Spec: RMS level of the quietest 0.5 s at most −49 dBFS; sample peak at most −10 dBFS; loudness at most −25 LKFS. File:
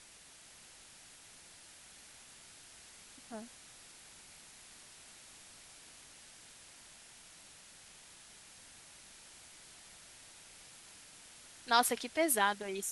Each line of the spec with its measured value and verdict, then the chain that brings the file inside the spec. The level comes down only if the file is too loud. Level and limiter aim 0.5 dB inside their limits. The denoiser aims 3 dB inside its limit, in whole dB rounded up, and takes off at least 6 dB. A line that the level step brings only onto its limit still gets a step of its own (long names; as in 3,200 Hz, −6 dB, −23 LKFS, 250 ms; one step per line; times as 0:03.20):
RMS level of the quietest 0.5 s −58 dBFS: in spec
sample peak −13.5 dBFS: in spec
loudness −32.5 LKFS: in spec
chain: no processing needed